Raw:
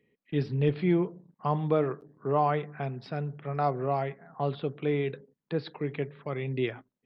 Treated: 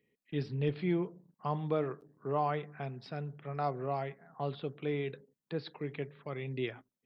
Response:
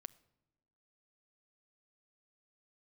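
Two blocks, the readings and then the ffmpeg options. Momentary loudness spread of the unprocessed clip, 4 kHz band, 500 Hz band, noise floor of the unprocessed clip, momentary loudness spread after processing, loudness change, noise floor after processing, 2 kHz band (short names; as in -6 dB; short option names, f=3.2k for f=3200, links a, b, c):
9 LU, -3.5 dB, -6.5 dB, -85 dBFS, 9 LU, -6.5 dB, under -85 dBFS, -5.0 dB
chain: -af "highshelf=f=3.8k:g=7,volume=-6.5dB"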